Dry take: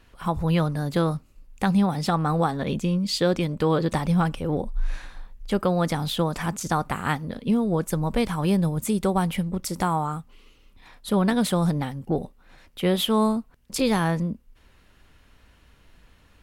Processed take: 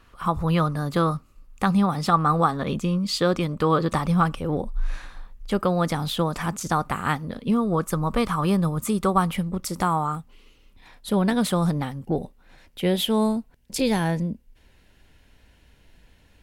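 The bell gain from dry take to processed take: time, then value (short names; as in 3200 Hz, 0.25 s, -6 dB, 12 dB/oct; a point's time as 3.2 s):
bell 1200 Hz 0.31 oct
+11 dB
from 4.35 s +4.5 dB
from 7.52 s +14 dB
from 9.33 s +6 dB
from 10.15 s -3.5 dB
from 11.35 s +4 dB
from 12.04 s -4.5 dB
from 12.8 s -11.5 dB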